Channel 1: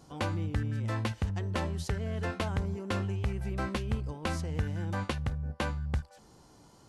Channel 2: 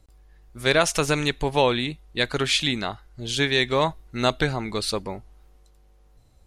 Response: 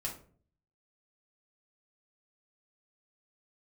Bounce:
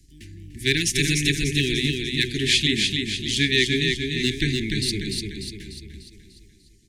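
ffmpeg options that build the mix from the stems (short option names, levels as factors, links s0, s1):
-filter_complex "[0:a]equalizer=f=8900:w=0.59:g=8.5,asoftclip=type=tanh:threshold=0.0335,volume=0.473,asplit=2[s0][s1];[s1]volume=0.2[s2];[1:a]bandreject=f=60:t=h:w=6,bandreject=f=120:t=h:w=6,bandreject=f=180:t=h:w=6,bandreject=f=240:t=h:w=6,bandreject=f=300:t=h:w=6,bandreject=f=360:t=h:w=6,bandreject=f=420:t=h:w=6,asoftclip=type=hard:threshold=0.335,volume=1.33,asplit=2[s3][s4];[s4]volume=0.631[s5];[s2][s5]amix=inputs=2:normalize=0,aecho=0:1:296|592|888|1184|1480|1776|2072:1|0.49|0.24|0.118|0.0576|0.0282|0.0138[s6];[s0][s3][s6]amix=inputs=3:normalize=0,asuperstop=centerf=830:order=20:qfactor=0.62"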